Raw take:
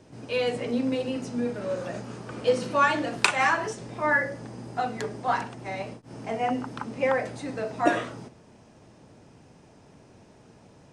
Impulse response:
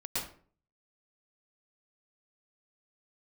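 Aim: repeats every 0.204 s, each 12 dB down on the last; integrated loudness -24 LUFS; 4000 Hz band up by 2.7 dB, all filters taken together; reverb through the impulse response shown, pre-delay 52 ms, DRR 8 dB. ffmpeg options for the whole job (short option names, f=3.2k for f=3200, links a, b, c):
-filter_complex "[0:a]equalizer=f=4k:t=o:g=3.5,aecho=1:1:204|408|612:0.251|0.0628|0.0157,asplit=2[a][b];[1:a]atrim=start_sample=2205,adelay=52[c];[b][c]afir=irnorm=-1:irlink=0,volume=-12dB[d];[a][d]amix=inputs=2:normalize=0,volume=2.5dB"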